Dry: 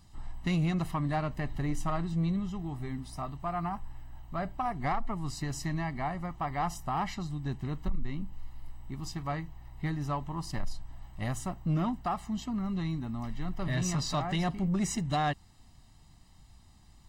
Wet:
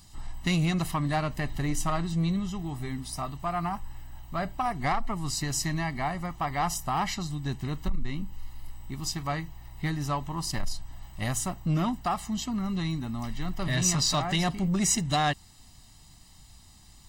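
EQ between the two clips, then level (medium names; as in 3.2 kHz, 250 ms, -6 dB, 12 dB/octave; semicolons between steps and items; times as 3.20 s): treble shelf 2.9 kHz +11 dB; +2.5 dB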